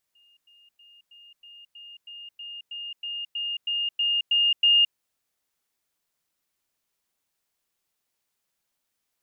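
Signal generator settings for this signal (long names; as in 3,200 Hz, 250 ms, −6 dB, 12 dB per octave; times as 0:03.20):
level staircase 2,830 Hz −57 dBFS, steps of 3 dB, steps 15, 0.22 s 0.10 s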